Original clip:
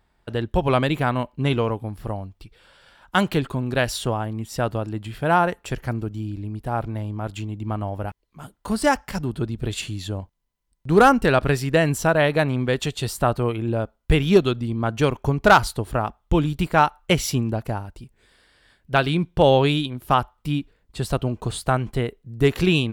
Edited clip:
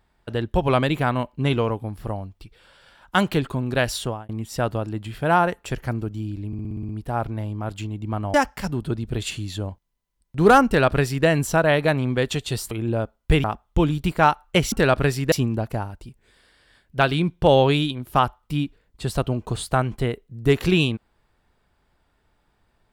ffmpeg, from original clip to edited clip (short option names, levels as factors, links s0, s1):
-filter_complex "[0:a]asplit=14[s0][s1][s2][s3][s4][s5][s6][s7][s8][s9][s10][s11][s12][s13];[s0]atrim=end=4.29,asetpts=PTS-STARTPTS,afade=t=out:st=4:d=0.29[s14];[s1]atrim=start=4.29:end=6.532,asetpts=PTS-STARTPTS,afade=t=in:d=0.004:c=hsin[s15];[s2]atrim=start=6.468:end=6.532[s16];[s3]atrim=start=6.468:end=6.532[s17];[s4]atrim=start=6.468:end=6.532[s18];[s5]atrim=start=6.468:end=6.532[s19];[s6]atrim=start=6.468:end=6.532[s20];[s7]atrim=start=6.468:end=6.532[s21];[s8]atrim=start=6.468:end=7.922[s22];[s9]atrim=start=8.848:end=13.222[s23];[s10]atrim=start=13.508:end=14.242[s24];[s11]atrim=start=15.988:end=17.272[s25];[s12]atrim=start=11.168:end=11.772[s26];[s13]atrim=start=17.268[s27];[s14][s15]concat=n=2:v=0:a=1[s28];[s28][s16]acrossfade=d=0.004:c1=hsin:c2=hsin[s29];[s29][s17]acrossfade=d=0.004:c1=hsin:c2=hsin[s30];[s30][s18]acrossfade=d=0.004:c1=hsin:c2=hsin[s31];[s31][s19]acrossfade=d=0.004:c1=hsin:c2=hsin[s32];[s32][s20]acrossfade=d=0.004:c1=hsin:c2=hsin[s33];[s33][s21]acrossfade=d=0.004:c1=hsin:c2=hsin[s34];[s34][s22]acrossfade=d=0.004:c1=hsin:c2=hsin[s35];[s35][s23]acrossfade=d=0.004:c1=hsin:c2=hsin[s36];[s36][s24]acrossfade=d=0.004:c1=hsin:c2=hsin[s37];[s37][s25]acrossfade=d=0.004:c1=hsin:c2=hsin[s38];[s38][s26]acrossfade=d=0.004:c1=hsin:c2=hsin[s39];[s39][s27]acrossfade=d=0.004:c1=hsin:c2=hsin"